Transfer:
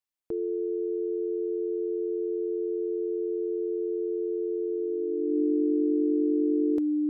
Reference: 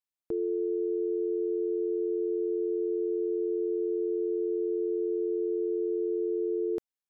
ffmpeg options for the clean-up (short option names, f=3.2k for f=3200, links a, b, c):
-af "bandreject=f=300:w=30"